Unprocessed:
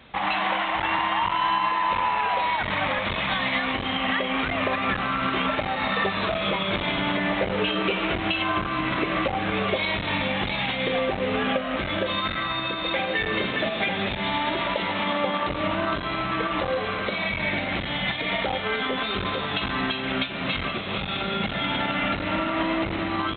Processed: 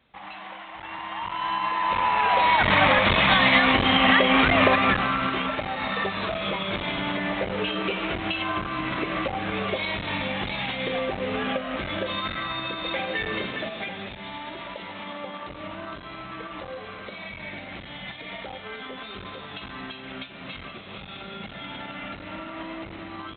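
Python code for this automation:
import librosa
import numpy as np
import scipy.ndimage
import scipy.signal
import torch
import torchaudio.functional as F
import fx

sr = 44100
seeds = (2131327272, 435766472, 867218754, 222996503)

y = fx.gain(x, sr, db=fx.line((0.71, -15.0), (1.49, -4.5), (2.69, 7.0), (4.65, 7.0), (5.46, -3.0), (13.29, -3.0), (14.22, -11.0)))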